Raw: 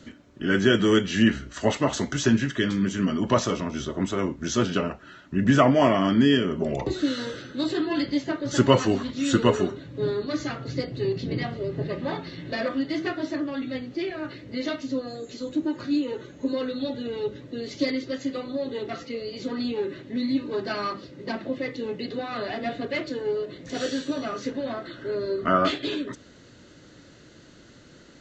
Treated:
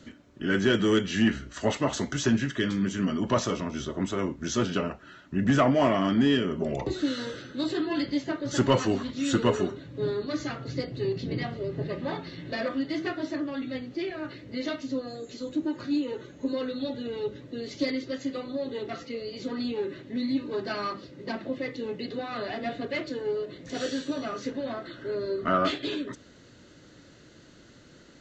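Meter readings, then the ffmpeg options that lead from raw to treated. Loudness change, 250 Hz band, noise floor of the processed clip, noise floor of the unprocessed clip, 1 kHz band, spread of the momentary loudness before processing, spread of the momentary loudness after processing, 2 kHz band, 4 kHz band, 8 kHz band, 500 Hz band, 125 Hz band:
-3.0 dB, -3.0 dB, -54 dBFS, -51 dBFS, -3.5 dB, 12 LU, 11 LU, -3.0 dB, -3.0 dB, no reading, -3.0 dB, -3.5 dB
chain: -af "asoftclip=type=tanh:threshold=0.335,volume=0.75"

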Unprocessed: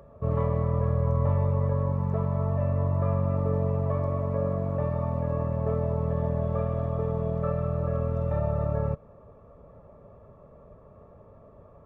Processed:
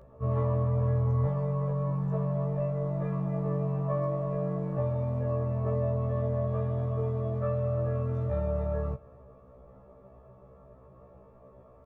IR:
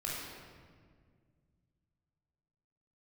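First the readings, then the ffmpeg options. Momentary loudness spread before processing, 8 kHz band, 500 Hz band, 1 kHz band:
3 LU, no reading, -2.0 dB, -4.5 dB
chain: -filter_complex "[0:a]asplit=2[s0][s1];[s1]aecho=0:1:268:0.0631[s2];[s0][s2]amix=inputs=2:normalize=0,afftfilt=real='re*1.73*eq(mod(b,3),0)':imag='im*1.73*eq(mod(b,3),0)':win_size=2048:overlap=0.75"

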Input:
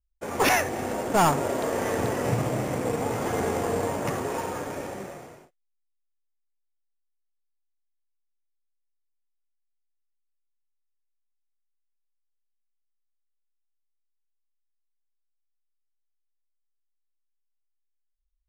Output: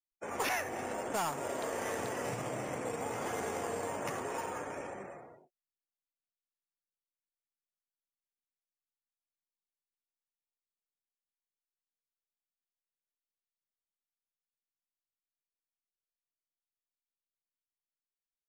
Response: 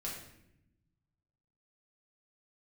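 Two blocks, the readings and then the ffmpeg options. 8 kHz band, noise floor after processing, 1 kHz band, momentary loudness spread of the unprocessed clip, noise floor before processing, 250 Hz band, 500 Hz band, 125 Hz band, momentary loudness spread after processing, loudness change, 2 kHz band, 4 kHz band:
-8.0 dB, under -85 dBFS, -10.0 dB, 13 LU, -76 dBFS, -13.0 dB, -10.5 dB, -16.0 dB, 9 LU, -10.5 dB, -9.0 dB, -10.0 dB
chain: -filter_complex "[0:a]afftdn=nr=27:nf=-49,acrossover=split=100|2800[s0][s1][s2];[s0]acompressor=threshold=0.00501:ratio=4[s3];[s1]acompressor=threshold=0.0501:ratio=4[s4];[s2]acompressor=threshold=0.0158:ratio=4[s5];[s3][s4][s5]amix=inputs=3:normalize=0,lowshelf=f=400:g=-9,volume=0.631"

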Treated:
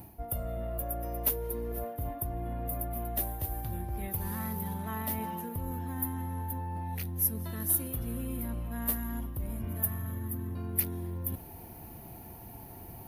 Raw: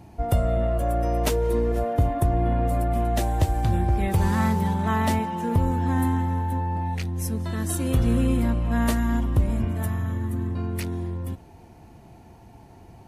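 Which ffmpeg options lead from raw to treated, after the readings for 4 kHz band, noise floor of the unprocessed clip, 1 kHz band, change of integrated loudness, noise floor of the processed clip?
-12.5 dB, -49 dBFS, -12.5 dB, -9.5 dB, -47 dBFS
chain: -af "areverse,acompressor=threshold=0.02:ratio=6,areverse,aexciter=amount=15.7:drive=7.3:freq=11000"

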